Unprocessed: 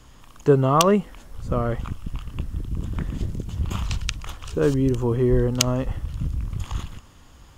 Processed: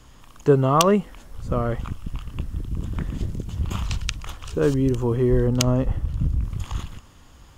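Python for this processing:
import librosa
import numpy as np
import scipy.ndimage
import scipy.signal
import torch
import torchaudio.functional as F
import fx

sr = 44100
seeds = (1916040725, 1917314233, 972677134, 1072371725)

y = fx.tilt_shelf(x, sr, db=4.0, hz=970.0, at=(5.47, 6.44))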